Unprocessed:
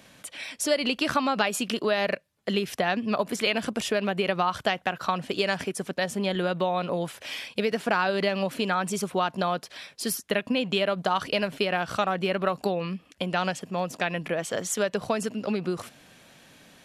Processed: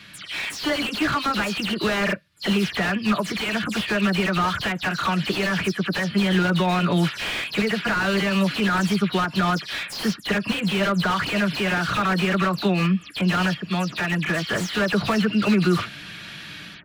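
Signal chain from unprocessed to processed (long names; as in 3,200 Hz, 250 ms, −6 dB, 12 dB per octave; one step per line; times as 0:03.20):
every frequency bin delayed by itself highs early, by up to 106 ms
flat-topped bell 2,400 Hz +12.5 dB 2.4 octaves
automatic gain control gain up to 7.5 dB
low shelf with overshoot 350 Hz +7 dB, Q 1.5
notch comb filter 260 Hz
brickwall limiter −10 dBFS, peak gain reduction 9.5 dB
slew-rate limiting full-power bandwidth 130 Hz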